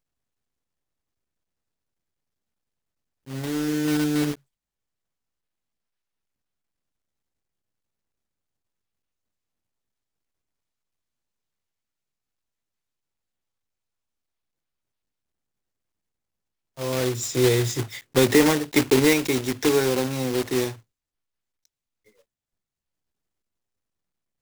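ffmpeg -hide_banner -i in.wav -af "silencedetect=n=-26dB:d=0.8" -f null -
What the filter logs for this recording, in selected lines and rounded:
silence_start: 0.00
silence_end: 3.33 | silence_duration: 3.33
silence_start: 4.32
silence_end: 16.80 | silence_duration: 12.48
silence_start: 20.70
silence_end: 24.41 | silence_duration: 3.71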